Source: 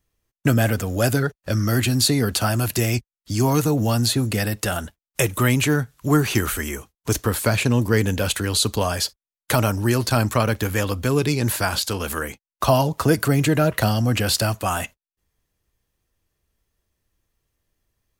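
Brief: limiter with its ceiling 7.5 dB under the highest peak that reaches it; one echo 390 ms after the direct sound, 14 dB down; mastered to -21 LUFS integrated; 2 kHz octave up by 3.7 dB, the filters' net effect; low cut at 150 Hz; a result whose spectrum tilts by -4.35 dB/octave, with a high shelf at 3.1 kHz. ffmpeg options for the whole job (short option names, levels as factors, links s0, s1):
-af "highpass=150,equalizer=f=2000:t=o:g=6,highshelf=f=3100:g=-3,alimiter=limit=0.266:level=0:latency=1,aecho=1:1:390:0.2,volume=1.33"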